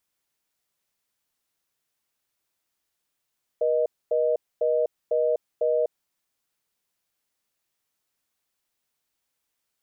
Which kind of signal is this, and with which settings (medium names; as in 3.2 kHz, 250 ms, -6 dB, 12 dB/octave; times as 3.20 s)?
call progress tone reorder tone, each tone -22.5 dBFS 2.39 s